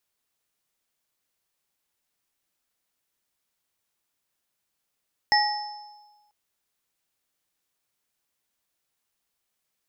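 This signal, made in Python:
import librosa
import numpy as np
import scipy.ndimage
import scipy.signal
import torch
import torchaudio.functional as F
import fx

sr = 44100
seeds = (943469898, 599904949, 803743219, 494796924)

y = fx.additive_free(sr, length_s=0.99, hz=835.0, level_db=-18.5, upper_db=(-1.0, -1), decay_s=1.29, upper_decays_s=(0.62, 1.05), upper_hz=(1910.0, 5270.0))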